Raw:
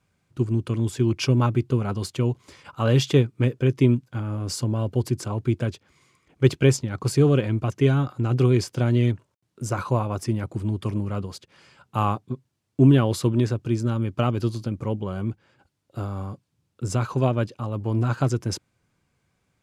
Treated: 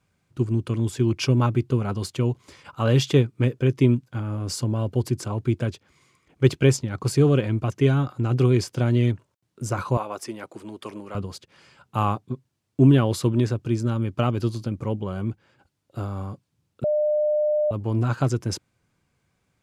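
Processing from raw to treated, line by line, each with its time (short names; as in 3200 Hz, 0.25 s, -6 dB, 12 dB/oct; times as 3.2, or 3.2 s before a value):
9.97–11.15 HPF 410 Hz
16.84–17.71 bleep 602 Hz -18.5 dBFS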